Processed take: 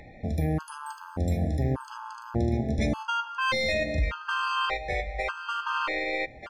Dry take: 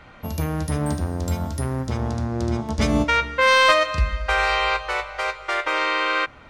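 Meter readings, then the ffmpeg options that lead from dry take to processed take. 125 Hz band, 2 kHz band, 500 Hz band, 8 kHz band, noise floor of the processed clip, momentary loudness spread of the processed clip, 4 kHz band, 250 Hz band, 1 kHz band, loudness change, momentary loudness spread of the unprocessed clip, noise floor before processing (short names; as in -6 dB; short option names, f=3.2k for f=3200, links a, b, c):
-4.0 dB, -9.0 dB, -7.5 dB, -11.5 dB, -47 dBFS, 7 LU, -9.0 dB, -5.0 dB, -8.5 dB, -7.0 dB, 10 LU, -46 dBFS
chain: -filter_complex "[0:a]acrossover=split=2200[a][b];[a]alimiter=limit=-17.5dB:level=0:latency=1:release=73[c];[c][b]amix=inputs=2:normalize=0,aecho=1:1:942:0.299,aeval=exprs='0.335*(cos(1*acos(clip(val(0)/0.335,-1,1)))-cos(1*PI/2))+0.0119*(cos(4*acos(clip(val(0)/0.335,-1,1)))-cos(4*PI/2))':c=same,acompressor=mode=upward:threshold=-42dB:ratio=2.5,highshelf=f=3.8k:g=-11.5,afftfilt=real='re*gt(sin(2*PI*0.85*pts/sr)*(1-2*mod(floor(b*sr/1024/850),2)),0)':imag='im*gt(sin(2*PI*0.85*pts/sr)*(1-2*mod(floor(b*sr/1024/850),2)),0)':win_size=1024:overlap=0.75"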